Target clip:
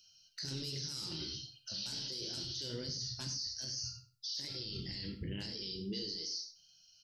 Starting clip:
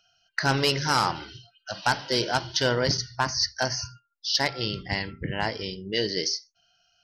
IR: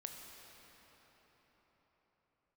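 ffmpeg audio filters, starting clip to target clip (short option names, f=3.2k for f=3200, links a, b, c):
-filter_complex "[0:a]firequalizer=gain_entry='entry(360,0);entry(750,-21);entry(4100,10)':delay=0.05:min_phase=1,alimiter=level_in=5.5dB:limit=-24dB:level=0:latency=1:release=22,volume=-5.5dB,flanger=delay=8.7:depth=9.9:regen=-40:speed=1.3:shape=triangular,asplit=2[a][b];[b]adelay=101,lowpass=f=4.2k:p=1,volume=-14dB,asplit=2[c][d];[d]adelay=101,lowpass=f=4.2k:p=1,volume=0.16[e];[a][c][e]amix=inputs=3:normalize=0[f];[1:a]atrim=start_sample=2205,atrim=end_sample=4410[g];[f][g]afir=irnorm=-1:irlink=0,volume=6dB"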